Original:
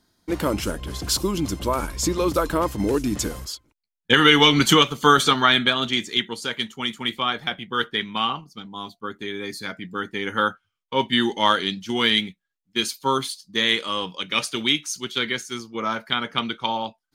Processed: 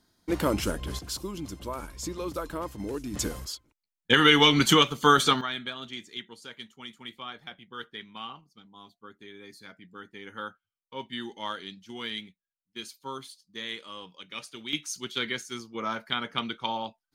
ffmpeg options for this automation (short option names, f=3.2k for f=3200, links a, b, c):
-af "asetnsamples=n=441:p=0,asendcmd='0.99 volume volume -12dB;3.14 volume volume -4dB;5.41 volume volume -16dB;14.73 volume volume -6dB',volume=-2.5dB"